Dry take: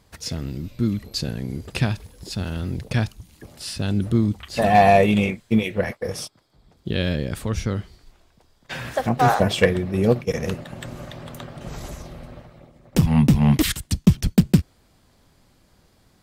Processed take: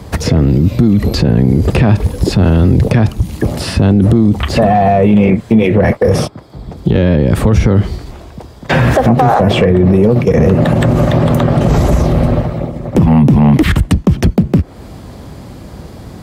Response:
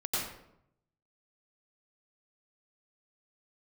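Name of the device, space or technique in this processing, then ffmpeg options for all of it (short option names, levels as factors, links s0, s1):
mastering chain: -filter_complex "[0:a]highpass=f=43:w=0.5412,highpass=f=43:w=1.3066,equalizer=f=1500:t=o:w=0.2:g=-2.5,acrossover=split=210|2600[s0][s1][s2];[s0]acompressor=threshold=0.0398:ratio=4[s3];[s1]acompressor=threshold=0.1:ratio=4[s4];[s2]acompressor=threshold=0.00501:ratio=4[s5];[s3][s4][s5]amix=inputs=3:normalize=0,acompressor=threshold=0.0447:ratio=2,asoftclip=type=tanh:threshold=0.119,tiltshelf=f=1200:g=6,alimiter=level_in=17.8:limit=0.891:release=50:level=0:latency=1,volume=0.891"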